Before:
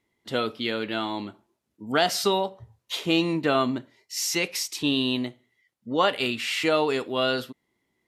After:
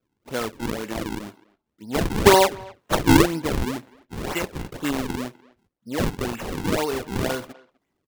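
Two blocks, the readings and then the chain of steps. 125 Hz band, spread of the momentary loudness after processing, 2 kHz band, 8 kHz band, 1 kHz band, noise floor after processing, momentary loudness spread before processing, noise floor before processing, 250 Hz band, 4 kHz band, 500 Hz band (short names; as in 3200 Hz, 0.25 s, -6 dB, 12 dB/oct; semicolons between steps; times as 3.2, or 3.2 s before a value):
+9.0 dB, 16 LU, +1.0 dB, +1.5 dB, +3.0 dB, -78 dBFS, 11 LU, -78 dBFS, +3.5 dB, -3.5 dB, +2.5 dB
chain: spectral gain 2.12–3.26, 210–5000 Hz +11 dB; decimation with a swept rate 42×, swing 160% 2 Hz; speakerphone echo 0.25 s, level -22 dB; gain -1 dB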